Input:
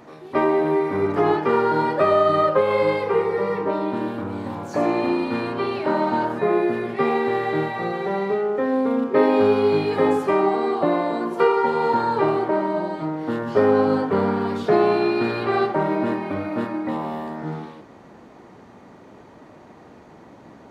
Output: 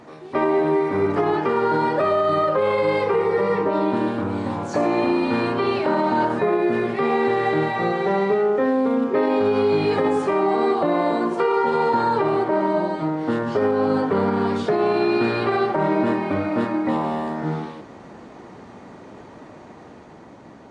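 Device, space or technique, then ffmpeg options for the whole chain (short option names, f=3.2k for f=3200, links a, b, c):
low-bitrate web radio: -af "dynaudnorm=f=450:g=7:m=3.5dB,alimiter=limit=-12.5dB:level=0:latency=1:release=63,volume=1.5dB" -ar 22050 -c:a libmp3lame -b:a 48k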